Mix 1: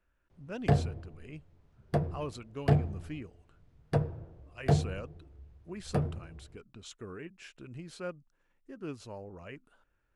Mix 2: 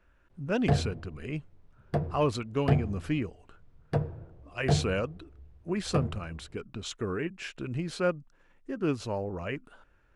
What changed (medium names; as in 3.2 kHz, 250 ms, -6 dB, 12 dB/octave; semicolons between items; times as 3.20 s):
speech +11.5 dB; master: add treble shelf 7.4 kHz -7.5 dB